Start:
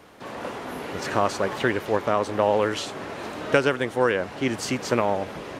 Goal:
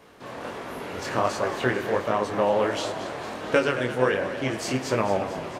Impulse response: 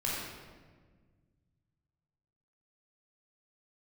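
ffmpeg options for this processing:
-filter_complex "[0:a]flanger=delay=18:depth=7.1:speed=1.4,asplit=8[s0][s1][s2][s3][s4][s5][s6][s7];[s1]adelay=224,afreqshift=68,volume=0.251[s8];[s2]adelay=448,afreqshift=136,volume=0.158[s9];[s3]adelay=672,afreqshift=204,volume=0.1[s10];[s4]adelay=896,afreqshift=272,volume=0.0631[s11];[s5]adelay=1120,afreqshift=340,volume=0.0394[s12];[s6]adelay=1344,afreqshift=408,volume=0.0248[s13];[s7]adelay=1568,afreqshift=476,volume=0.0157[s14];[s0][s8][s9][s10][s11][s12][s13][s14]amix=inputs=8:normalize=0,asplit=2[s15][s16];[1:a]atrim=start_sample=2205[s17];[s16][s17]afir=irnorm=-1:irlink=0,volume=0.168[s18];[s15][s18]amix=inputs=2:normalize=0"

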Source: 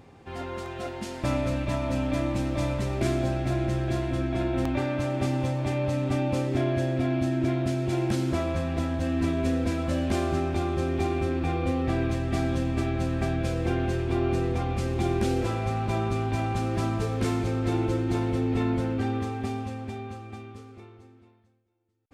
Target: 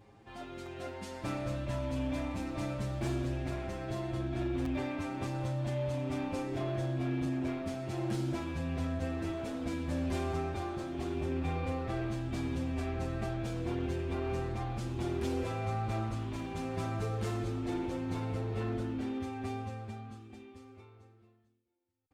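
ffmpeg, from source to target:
-filter_complex "[0:a]asettb=1/sr,asplit=3[s0][s1][s2];[s0]atrim=end=7.254[s3];[s1]atrim=start=7.25:end=9.3,asetpts=PTS-STARTPTS,afade=t=in:d=0.004:c=qsin,afade=t=out:st=2.046:d=0.004:c=qsin,highpass=f=62:w=0.5412,highpass=f=62:w=1.3066[s4];[s2]atrim=start=9.296[s5];[s3][s4]acrossfade=d=0.004:c1=hsin:c2=qsin[s6];[s6][s5]acrossfade=d=0.004:c1=qsin:c2=hsin,asoftclip=type=hard:threshold=0.075,asplit=2[s7][s8];[s8]adelay=7.1,afreqshift=0.76[s9];[s7][s9]amix=inputs=2:normalize=1,volume=0.596"

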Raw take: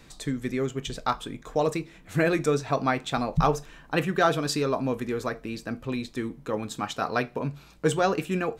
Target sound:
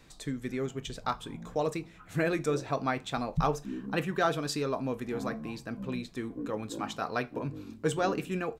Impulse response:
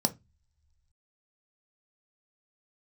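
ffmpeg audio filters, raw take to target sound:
-filter_complex "[0:a]asplit=2[s0][s1];[s1]asetrate=18846,aresample=44100[s2];[1:a]atrim=start_sample=2205,asetrate=61740,aresample=44100,lowpass=1700[s3];[s2][s3]afir=irnorm=-1:irlink=0,volume=0.075[s4];[s0][s4]amix=inputs=2:normalize=0,volume=0.531"

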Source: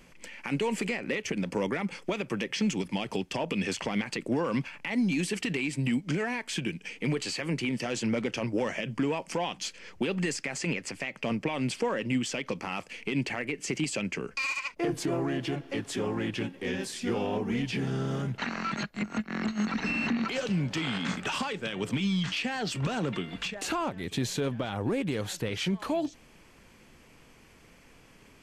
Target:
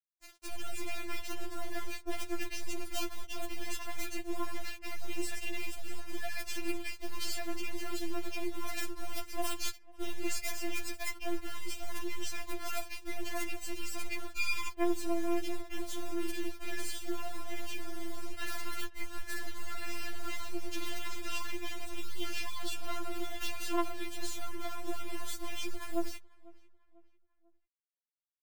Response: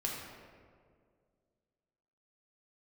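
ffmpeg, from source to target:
-filter_complex "[0:a]bandreject=f=84.35:t=h:w=4,bandreject=f=168.7:t=h:w=4,bandreject=f=253.05:t=h:w=4,agate=range=0.126:threshold=0.00794:ratio=16:detection=peak,adynamicequalizer=threshold=0.00355:dfrequency=6200:dqfactor=0.82:tfrequency=6200:tqfactor=0.82:attack=5:release=100:ratio=0.375:range=2:mode=cutabove:tftype=bell,areverse,acompressor=threshold=0.0126:ratio=10,areverse,acrusher=bits=6:dc=4:mix=0:aa=0.000001,acrossover=split=4500[s0][s1];[s0]asoftclip=type=tanh:threshold=0.015[s2];[s2][s1]amix=inputs=2:normalize=0,asplit=2[s3][s4];[s4]adelay=495,lowpass=f=2600:p=1,volume=0.0708,asplit=2[s5][s6];[s6]adelay=495,lowpass=f=2600:p=1,volume=0.45,asplit=2[s7][s8];[s8]adelay=495,lowpass=f=2600:p=1,volume=0.45[s9];[s3][s5][s7][s9]amix=inputs=4:normalize=0,afftfilt=real='re*4*eq(mod(b,16),0)':imag='im*4*eq(mod(b,16),0)':win_size=2048:overlap=0.75,volume=3.55"

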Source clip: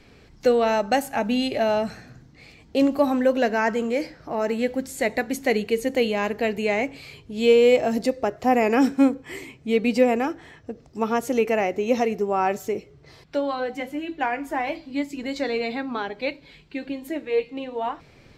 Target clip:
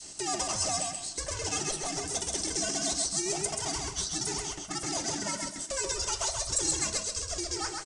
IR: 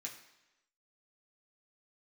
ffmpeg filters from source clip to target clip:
-filter_complex "[0:a]adynamicequalizer=threshold=0.02:dfrequency=710:dqfactor=1:tfrequency=710:tqfactor=1:attack=5:release=100:ratio=0.375:range=2:mode=cutabove:tftype=bell,acompressor=threshold=0.0355:ratio=2.5,aresample=11025,asoftclip=type=tanh:threshold=0.0168,aresample=44100,asetrate=39289,aresample=44100,atempo=1.12246,highpass=f=180:t=q:w=0.5412,highpass=f=180:t=q:w=1.307,lowpass=f=3600:t=q:w=0.5176,lowpass=f=3600:t=q:w=0.7071,lowpass=f=3600:t=q:w=1.932,afreqshift=-270,aecho=1:1:308|616|924|1232:0.631|0.189|0.0568|0.017,asplit=2[s0][s1];[1:a]atrim=start_sample=2205,highshelf=f=4100:g=4.5[s2];[s1][s2]afir=irnorm=-1:irlink=0,volume=1.5[s3];[s0][s3]amix=inputs=2:normalize=0,aexciter=amount=8.2:drive=4.7:freq=2400,asetrate=103194,aresample=44100"

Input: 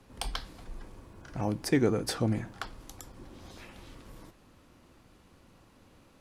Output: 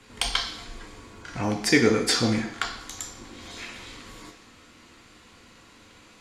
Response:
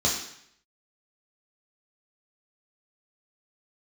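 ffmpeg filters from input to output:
-filter_complex "[0:a]equalizer=f=125:t=o:w=1:g=-4,equalizer=f=250:t=o:w=1:g=4,equalizer=f=500:t=o:w=1:g=6,equalizer=f=1000:t=o:w=1:g=4,equalizer=f=2000:t=o:w=1:g=9,equalizer=f=4000:t=o:w=1:g=9,equalizer=f=8000:t=o:w=1:g=8,asplit=2[s0][s1];[1:a]atrim=start_sample=2205,lowshelf=f=430:g=-8[s2];[s1][s2]afir=irnorm=-1:irlink=0,volume=0.251[s3];[s0][s3]amix=inputs=2:normalize=0"

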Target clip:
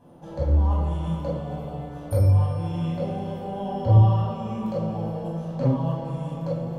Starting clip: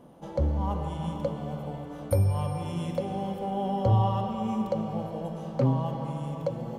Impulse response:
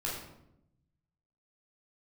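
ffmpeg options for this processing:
-filter_complex "[0:a]asettb=1/sr,asplit=3[s0][s1][s2];[s0]atrim=end=2.294[s3];[s1]atrim=start=2.29:end=4.6,asetpts=PTS-STARTPTS,afade=t=in:d=0.004:c=qsin,afade=t=out:st=2.306:d=0.004:c=qsin,acrossover=split=4500[s4][s5];[s5]acompressor=threshold=0.001:ratio=4:attack=1:release=60[s6];[s4][s6]amix=inputs=2:normalize=0[s7];[s2]atrim=start=4.596[s8];[s3][s7]acrossfade=d=0.004:c1=hsin:c2=qsin[s9];[s9][s8]acrossfade=d=0.004:c1=qsin:c2=hsin[s10];[1:a]atrim=start_sample=2205,atrim=end_sample=6615[s11];[s10][s11]afir=irnorm=-1:irlink=0,volume=0.75"

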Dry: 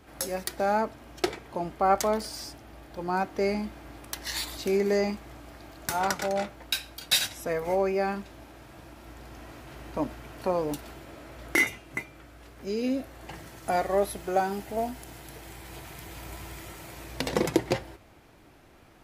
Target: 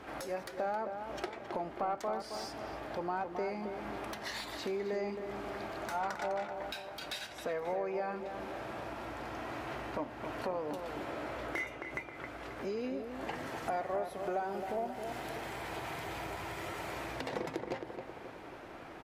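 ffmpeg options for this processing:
-filter_complex "[0:a]acompressor=threshold=0.00794:ratio=5,asplit=2[s0][s1];[s1]adelay=268,lowpass=f=1800:p=1,volume=0.447,asplit=2[s2][s3];[s3]adelay=268,lowpass=f=1800:p=1,volume=0.55,asplit=2[s4][s5];[s5]adelay=268,lowpass=f=1800:p=1,volume=0.55,asplit=2[s6][s7];[s7]adelay=268,lowpass=f=1800:p=1,volume=0.55,asplit=2[s8][s9];[s9]adelay=268,lowpass=f=1800:p=1,volume=0.55,asplit=2[s10][s11];[s11]adelay=268,lowpass=f=1800:p=1,volume=0.55,asplit=2[s12][s13];[s13]adelay=268,lowpass=f=1800:p=1,volume=0.55[s14];[s0][s2][s4][s6][s8][s10][s12][s14]amix=inputs=8:normalize=0,asplit=2[s15][s16];[s16]highpass=f=720:p=1,volume=7.08,asoftclip=type=tanh:threshold=0.0944[s17];[s15][s17]amix=inputs=2:normalize=0,lowpass=f=1300:p=1,volume=0.501,volume=1.12"

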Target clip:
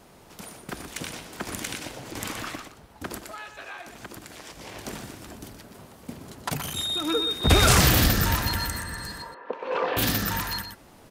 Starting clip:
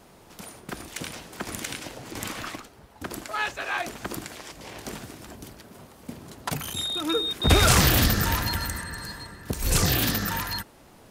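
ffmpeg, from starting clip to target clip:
-filter_complex "[0:a]asettb=1/sr,asplit=3[s0][s1][s2];[s0]atrim=end=3.154[s3];[s1]atrim=start=3.15:end=4.57,asetpts=PTS-STARTPTS,afade=t=in:d=0.004:c=qsin,afade=t=out:st=1.416:d=0.004:c=qsin,acompressor=threshold=0.0126:ratio=6[s4];[s2]atrim=start=4.566[s5];[s3][s4]acrossfade=d=0.004:c1=hsin:c2=qsin[s6];[s6][s5]acrossfade=d=0.004:c1=qsin:c2=hsin,asettb=1/sr,asplit=3[s7][s8][s9];[s7]atrim=end=9.224[s10];[s8]atrim=start=9.22:end=9.97,asetpts=PTS-STARTPTS,afade=t=in:d=0.004:c=qsin,afade=t=out:st=0.746:d=0.004:c=qsin,highpass=f=330:w=0.5412,highpass=f=330:w=1.3066,equalizer=f=340:t=q:w=4:g=-5,equalizer=f=510:t=q:w=4:g=10,equalizer=f=980:t=q:w=4:g=10,equalizer=f=2000:t=q:w=4:g=-5,lowpass=f=2500:w=0.5412,lowpass=f=2500:w=1.3066[s11];[s9]atrim=start=9.966[s12];[s10][s11]acrossfade=d=0.004:c1=hsin:c2=qsin[s13];[s13][s12]acrossfade=d=0.004:c1=qsin:c2=hsin,asplit=2[s14][s15];[s15]aecho=0:1:122:0.355[s16];[s14][s16]amix=inputs=2:normalize=0"

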